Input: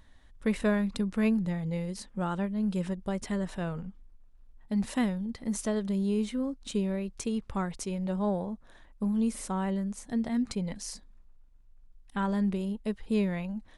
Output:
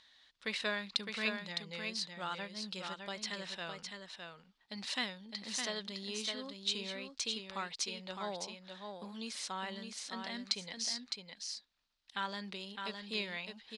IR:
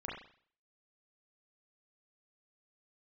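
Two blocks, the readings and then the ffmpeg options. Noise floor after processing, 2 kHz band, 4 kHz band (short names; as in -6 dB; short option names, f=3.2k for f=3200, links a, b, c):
-72 dBFS, +1.5 dB, +9.5 dB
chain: -filter_complex "[0:a]bandpass=f=4.3k:t=q:w=2.5:csg=0,aemphasis=mode=reproduction:type=50kf,asplit=2[a][b];[b]aecho=0:1:610:0.531[c];[a][c]amix=inputs=2:normalize=0,volume=15.5dB"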